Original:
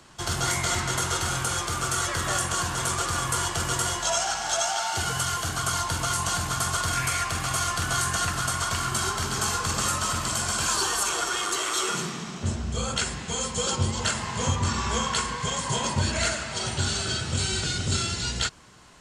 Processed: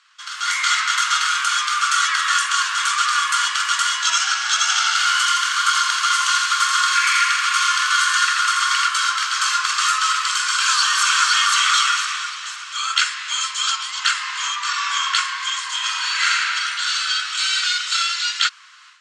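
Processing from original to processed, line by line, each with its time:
4.60–8.88 s: feedback delay 84 ms, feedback 59%, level -4 dB
10.45–11.27 s: echo throw 510 ms, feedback 40%, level -3 dB
15.77–16.44 s: reverb throw, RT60 2.3 s, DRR -3 dB
whole clip: low-pass 5 kHz 12 dB/octave; level rider gain up to 14 dB; elliptic high-pass 1.2 kHz, stop band 60 dB

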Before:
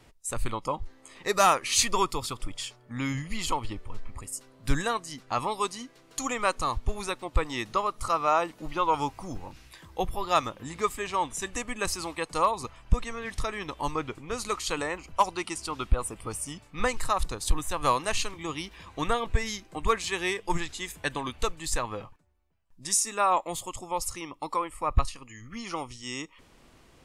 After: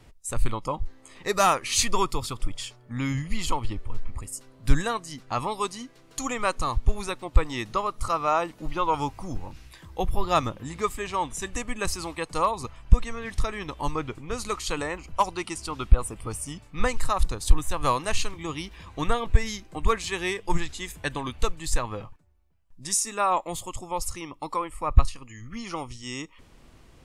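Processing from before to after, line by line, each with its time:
10.12–10.58 s: bass shelf 400 Hz +6 dB
whole clip: bass shelf 160 Hz +8 dB

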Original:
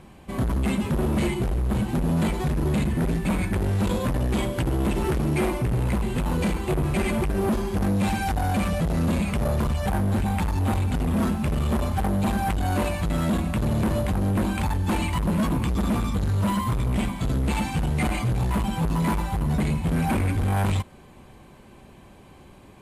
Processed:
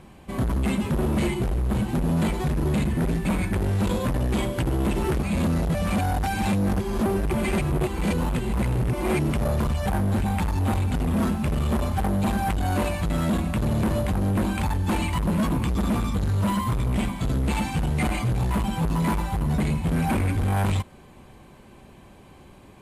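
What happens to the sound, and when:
5.23–9.32 s: reverse

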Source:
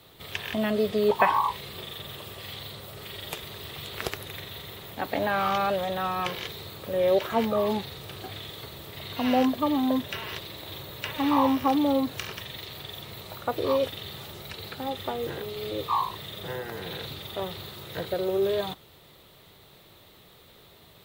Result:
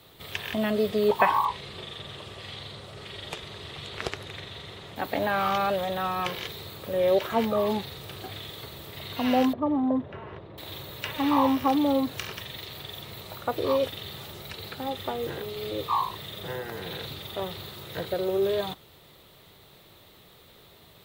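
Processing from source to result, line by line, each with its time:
1.45–4.96 s: Bessel low-pass 6.8 kHz, order 4
9.53–10.58 s: low-pass 1 kHz

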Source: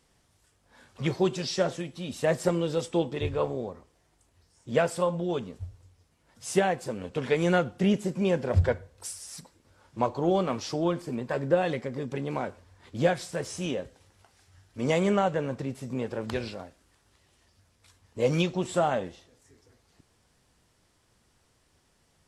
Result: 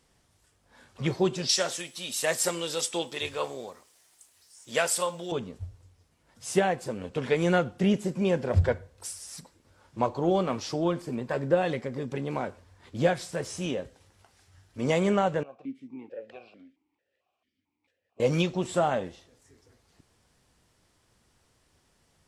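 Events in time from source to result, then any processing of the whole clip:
1.49–5.32 s: tilt EQ +4.5 dB/octave
15.43–18.20 s: stepped vowel filter 4.5 Hz

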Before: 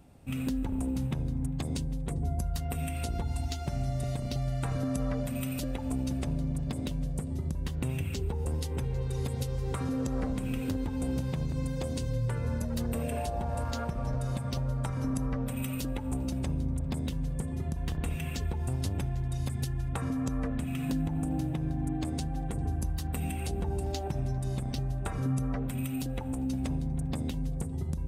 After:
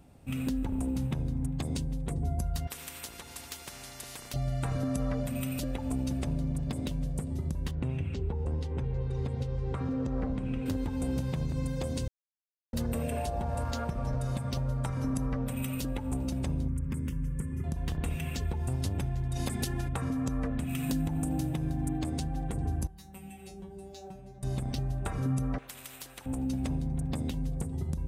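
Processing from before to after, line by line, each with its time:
2.67–4.34 s: spectrum-flattening compressor 4:1
7.71–10.66 s: tape spacing loss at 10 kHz 21 dB
12.08–12.73 s: mute
16.68–17.64 s: static phaser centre 1.7 kHz, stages 4
19.35–19.87 s: spectral peaks clipped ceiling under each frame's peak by 13 dB
20.69–21.99 s: treble shelf 4.8 kHz +9 dB
22.87–24.43 s: feedback comb 190 Hz, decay 0.23 s, mix 100%
25.58–26.26 s: spectrum-flattening compressor 4:1

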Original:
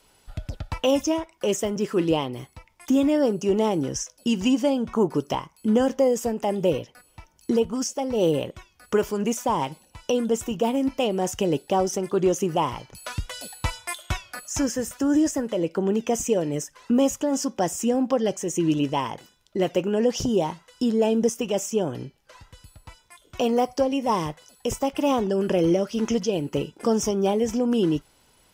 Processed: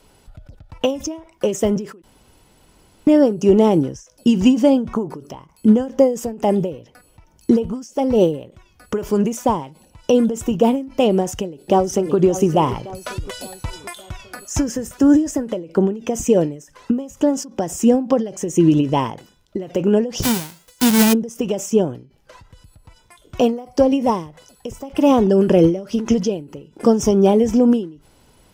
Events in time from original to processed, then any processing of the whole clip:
2.02–3.07 s: room tone
11.11–12.16 s: echo throw 570 ms, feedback 50%, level -14 dB
20.22–21.12 s: formants flattened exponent 0.1
whole clip: tilt shelf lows +4.5 dB, about 660 Hz; endings held to a fixed fall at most 130 dB/s; trim +7 dB

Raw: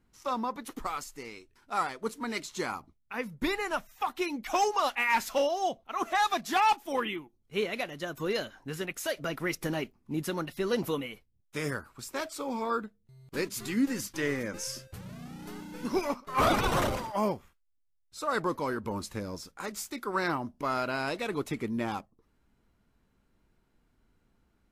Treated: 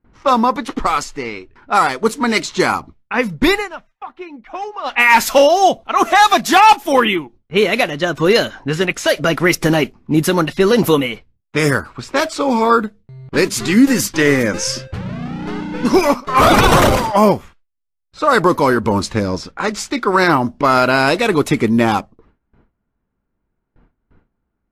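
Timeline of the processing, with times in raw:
3.48–5.04 s: dip -18 dB, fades 0.21 s
whole clip: level-controlled noise filter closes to 1.7 kHz, open at -28.5 dBFS; gate with hold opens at -58 dBFS; loudness maximiser +19.5 dB; trim -1 dB

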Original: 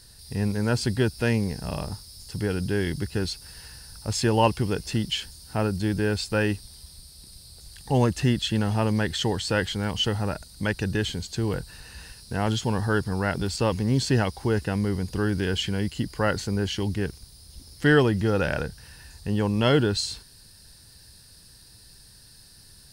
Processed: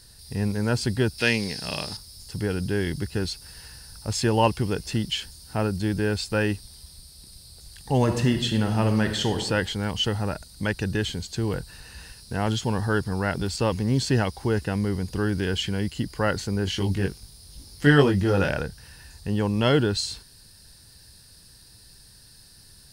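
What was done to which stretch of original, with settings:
1.18–1.97 s: frequency weighting D
7.97–9.40 s: reverb throw, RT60 0.87 s, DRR 5.5 dB
16.65–18.51 s: doubling 21 ms -3 dB

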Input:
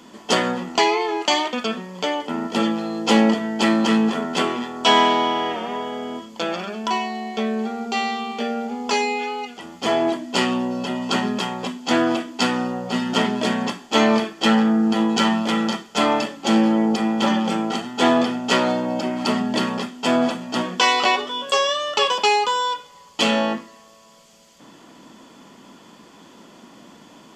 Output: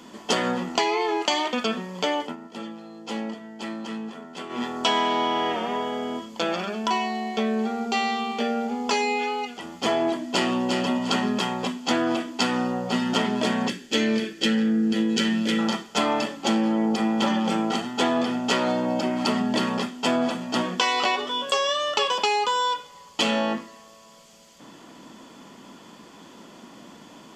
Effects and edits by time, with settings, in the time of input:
2.22–4.63 s: dip -15.5 dB, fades 0.14 s
9.99–10.63 s: echo throw 350 ms, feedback 30%, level -6.5 dB
13.68–15.59 s: high-order bell 910 Hz -15 dB 1.2 oct
whole clip: compression, threshold -19 dBFS

